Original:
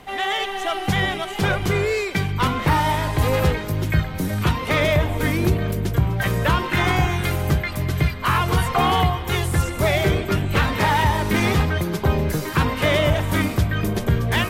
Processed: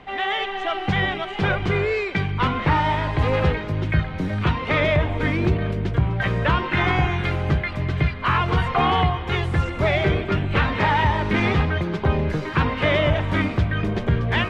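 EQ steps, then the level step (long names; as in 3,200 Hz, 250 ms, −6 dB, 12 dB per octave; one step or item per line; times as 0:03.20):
Chebyshev low-pass filter 2,800 Hz, order 2
0.0 dB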